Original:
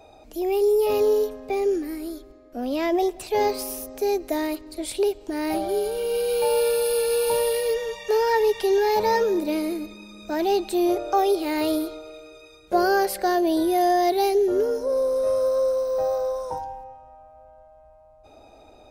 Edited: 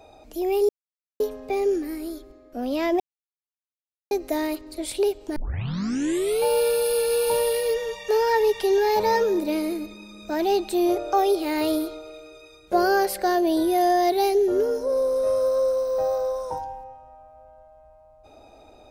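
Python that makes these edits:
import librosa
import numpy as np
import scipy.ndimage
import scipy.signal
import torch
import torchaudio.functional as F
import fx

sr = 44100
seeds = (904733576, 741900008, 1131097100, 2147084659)

y = fx.edit(x, sr, fx.silence(start_s=0.69, length_s=0.51),
    fx.silence(start_s=3.0, length_s=1.11),
    fx.tape_start(start_s=5.36, length_s=1.08), tone=tone)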